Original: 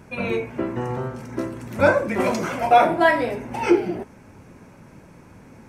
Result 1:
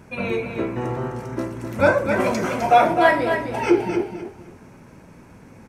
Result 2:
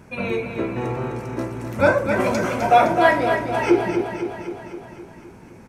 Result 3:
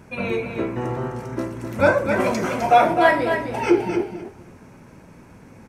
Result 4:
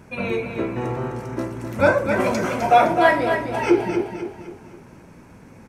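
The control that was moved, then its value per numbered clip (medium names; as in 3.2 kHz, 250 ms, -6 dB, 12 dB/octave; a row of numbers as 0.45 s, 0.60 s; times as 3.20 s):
feedback delay, feedback: 24%, 62%, 16%, 42%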